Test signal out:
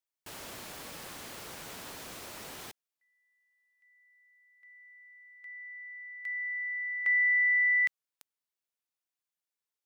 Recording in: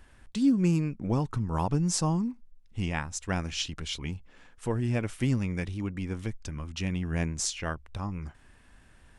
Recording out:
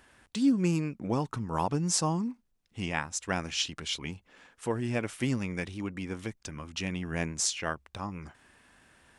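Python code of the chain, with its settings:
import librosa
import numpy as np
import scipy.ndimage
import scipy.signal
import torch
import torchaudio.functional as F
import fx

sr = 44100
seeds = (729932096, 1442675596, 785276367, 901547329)

y = fx.highpass(x, sr, hz=280.0, slope=6)
y = y * 10.0 ** (2.0 / 20.0)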